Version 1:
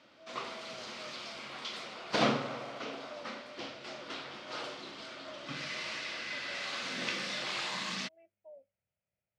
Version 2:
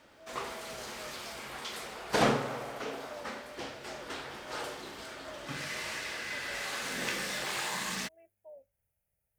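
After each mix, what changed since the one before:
background: add distance through air 79 m; master: remove cabinet simulation 150–4800 Hz, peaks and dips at 430 Hz -7 dB, 850 Hz -6 dB, 1.7 kHz -6 dB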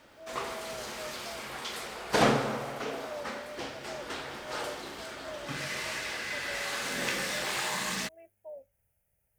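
speech +6.5 dB; reverb: on, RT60 0.80 s

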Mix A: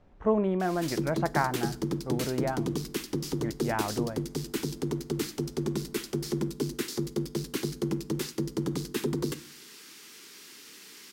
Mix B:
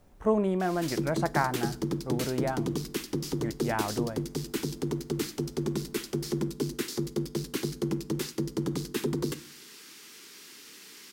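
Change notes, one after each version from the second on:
speech: remove low-pass 3.3 kHz 12 dB/octave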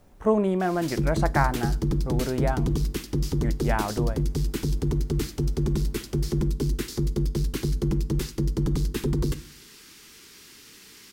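speech +3.5 dB; background: remove high-pass 220 Hz 12 dB/octave

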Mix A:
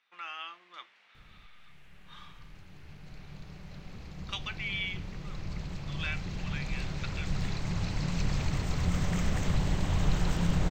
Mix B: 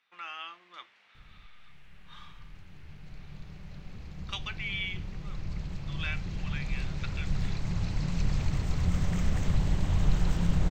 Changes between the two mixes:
background -3.5 dB; master: add bass shelf 160 Hz +7 dB

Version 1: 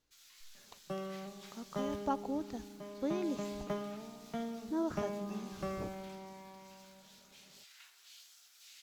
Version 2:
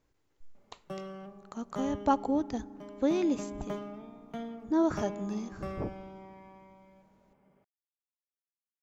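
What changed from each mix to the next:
speech +8.5 dB; first sound: muted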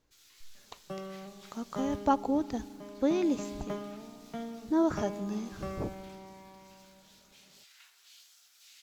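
first sound: unmuted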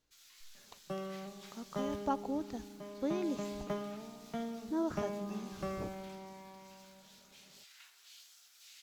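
speech -8.0 dB

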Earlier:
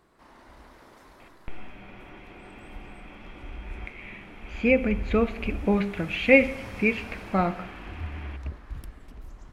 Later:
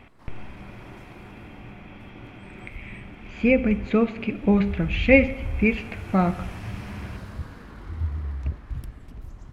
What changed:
speech: entry -1.20 s; master: add peaking EQ 110 Hz +10 dB 1.8 oct

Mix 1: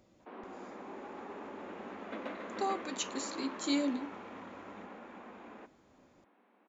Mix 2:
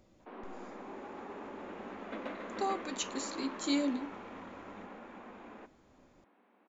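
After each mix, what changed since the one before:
master: remove high-pass 88 Hz 6 dB/octave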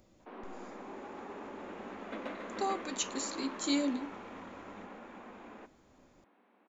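master: add treble shelf 7.3 kHz +7.5 dB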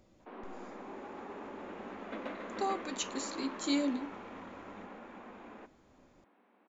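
master: add treble shelf 7.3 kHz -7.5 dB

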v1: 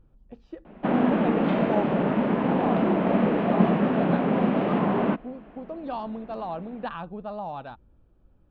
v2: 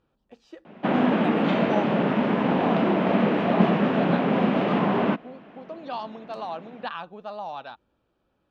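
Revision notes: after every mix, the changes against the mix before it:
speech: add high-pass 530 Hz 6 dB/octave; master: remove tape spacing loss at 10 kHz 22 dB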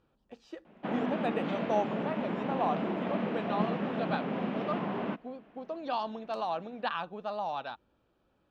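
background -11.5 dB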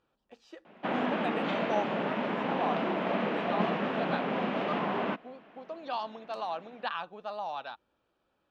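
background +7.0 dB; master: add bass shelf 350 Hz -10.5 dB

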